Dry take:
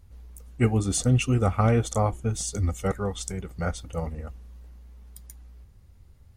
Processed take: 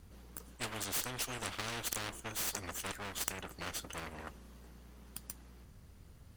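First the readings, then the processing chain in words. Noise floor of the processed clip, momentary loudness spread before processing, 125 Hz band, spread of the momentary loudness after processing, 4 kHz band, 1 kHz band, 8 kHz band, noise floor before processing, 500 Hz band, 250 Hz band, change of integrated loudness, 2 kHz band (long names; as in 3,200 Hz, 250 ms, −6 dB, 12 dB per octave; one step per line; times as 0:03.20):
−57 dBFS, 11 LU, −25.0 dB, 21 LU, −2.0 dB, −12.0 dB, −6.5 dB, −53 dBFS, −18.5 dB, −20.5 dB, −13.5 dB, −4.5 dB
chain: lower of the sound and its delayed copy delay 0.66 ms
every bin compressed towards the loudest bin 4 to 1
level −1 dB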